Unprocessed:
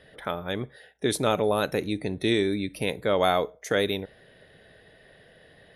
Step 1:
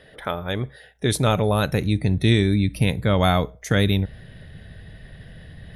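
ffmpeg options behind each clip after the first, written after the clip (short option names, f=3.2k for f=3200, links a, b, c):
-af "asubboost=boost=11.5:cutoff=140,areverse,acompressor=mode=upward:threshold=-40dB:ratio=2.5,areverse,volume=4dB"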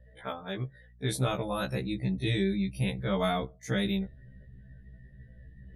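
-af "afftdn=nr=22:nf=-43,aeval=exprs='val(0)+0.00355*(sin(2*PI*60*n/s)+sin(2*PI*2*60*n/s)/2+sin(2*PI*3*60*n/s)/3+sin(2*PI*4*60*n/s)/4+sin(2*PI*5*60*n/s)/5)':c=same,afftfilt=real='re*1.73*eq(mod(b,3),0)':imag='im*1.73*eq(mod(b,3),0)':win_size=2048:overlap=0.75,volume=-7dB"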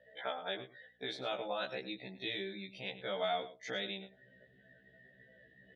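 -af "acompressor=threshold=-40dB:ratio=2.5,highpass=470,equalizer=f=700:t=q:w=4:g=4,equalizer=f=1.1k:t=q:w=4:g=-8,equalizer=f=3.2k:t=q:w=4:g=5,lowpass=f=4.5k:w=0.5412,lowpass=f=4.5k:w=1.3066,aecho=1:1:104:0.188,volume=4.5dB"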